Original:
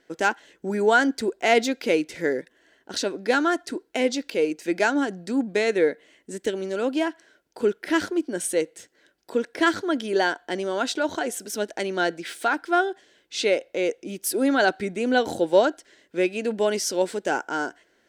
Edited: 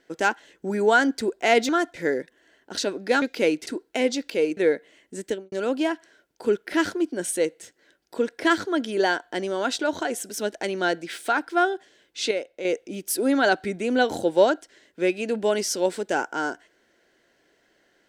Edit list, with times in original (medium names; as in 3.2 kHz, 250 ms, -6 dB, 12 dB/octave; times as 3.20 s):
1.69–2.13 s: swap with 3.41–3.66 s
4.57–5.73 s: delete
6.41–6.68 s: studio fade out
13.47–13.81 s: gain -6.5 dB